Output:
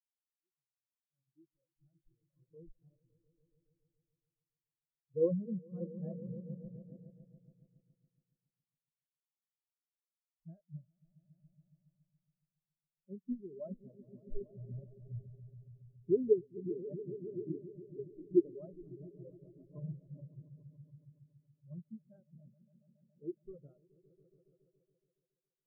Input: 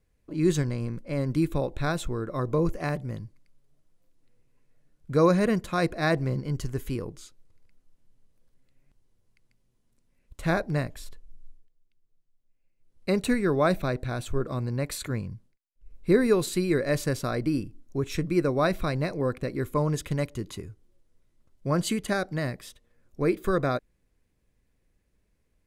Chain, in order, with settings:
fade in at the beginning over 3.15 s
low-pass filter 2,000 Hz
echo that builds up and dies away 140 ms, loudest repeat 5, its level −7 dB
every bin expanded away from the loudest bin 4 to 1
level −7.5 dB

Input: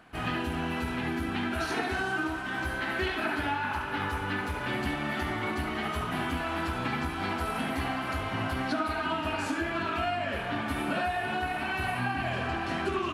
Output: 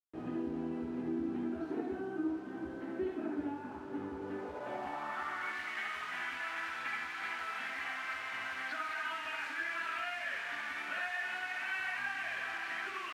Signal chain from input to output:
bit-depth reduction 6 bits, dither none
band-pass filter sweep 320 Hz → 1,900 Hz, 0:04.14–0:05.61

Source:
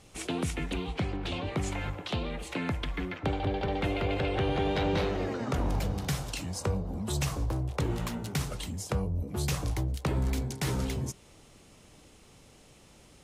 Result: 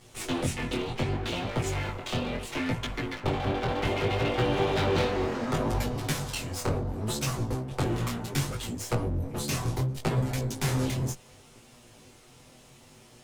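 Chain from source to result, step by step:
lower of the sound and its delayed copy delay 8 ms
chorus effect 0.68 Hz, delay 16.5 ms, depth 7.9 ms
level +7 dB

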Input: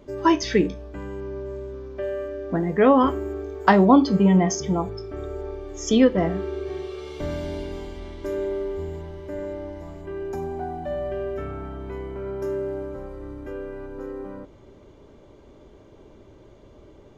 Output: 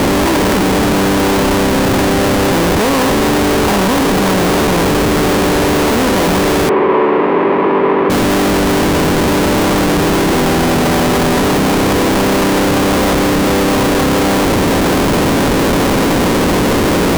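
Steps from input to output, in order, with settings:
compressor on every frequency bin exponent 0.2
0:02.71–0:03.37: mains-hum notches 50/100/150/200/250/300/350/400 Hz
comparator with hysteresis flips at −16 dBFS
0:06.69–0:08.10: loudspeaker in its box 250–2,300 Hz, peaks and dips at 270 Hz −3 dB, 400 Hz +7 dB, 710 Hz −4 dB, 1,000 Hz +7 dB, 1,500 Hz −5 dB

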